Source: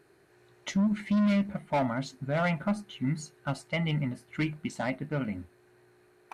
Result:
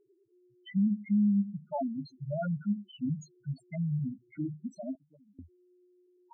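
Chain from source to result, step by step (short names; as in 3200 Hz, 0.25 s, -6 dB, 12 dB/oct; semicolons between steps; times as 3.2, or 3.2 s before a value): loudest bins only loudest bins 2; 4.95–5.39 auto-wah 610–1400 Hz, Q 3.9, up, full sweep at -31 dBFS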